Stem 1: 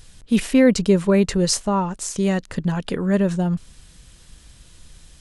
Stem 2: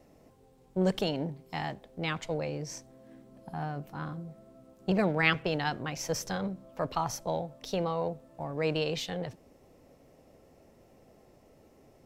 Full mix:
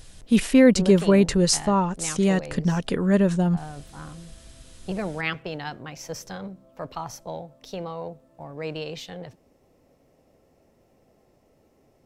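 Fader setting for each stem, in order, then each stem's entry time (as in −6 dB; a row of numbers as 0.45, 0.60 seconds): −0.5, −2.5 decibels; 0.00, 0.00 seconds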